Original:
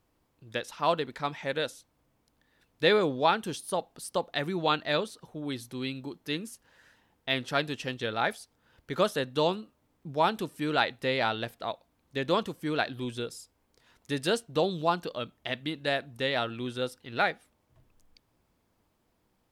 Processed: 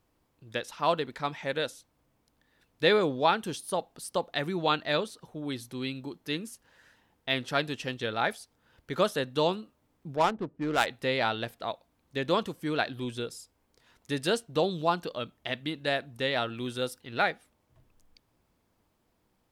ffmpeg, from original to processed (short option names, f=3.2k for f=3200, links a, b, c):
-filter_complex "[0:a]asettb=1/sr,asplit=3[a][b][c];[a]atrim=end=10.164[d];[b]atrim=start=10.16:end=10.87,asetpts=PTS-STARTPTS,afade=t=in:d=0.004:c=qsin,afade=t=out:st=0.706:d=0.004:c=qsin,adynamicsmooth=sensitivity=2.5:basefreq=520[e];[c]atrim=start=10.866[f];[d][e]acrossfade=d=0.004:c1=hsin:c2=qsin[g];[g][f]acrossfade=d=0.004:c1=qsin:c2=hsin,asettb=1/sr,asplit=3[h][i][j];[h]atrim=end=16.574[k];[i]atrim=start=16.57:end=17.01,asetpts=PTS-STARTPTS,afade=t=in:d=0.004:c=qsin,afade=t=out:st=0.436:d=0.004:c=qsin,highshelf=f=6.9k:g=8.5[l];[j]atrim=start=17.006[m];[k][l]acrossfade=d=0.004:c1=hsin:c2=qsin[n];[n][m]acrossfade=d=0.004:c1=qsin:c2=hsin"